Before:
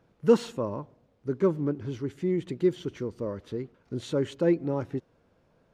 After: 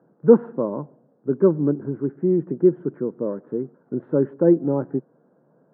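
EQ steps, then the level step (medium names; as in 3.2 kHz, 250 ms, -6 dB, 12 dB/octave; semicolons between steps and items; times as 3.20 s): Chebyshev band-pass 140–1600 Hz, order 4; tilt shelf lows +3.5 dB; peaking EQ 390 Hz +5 dB 2.6 oct; +1.0 dB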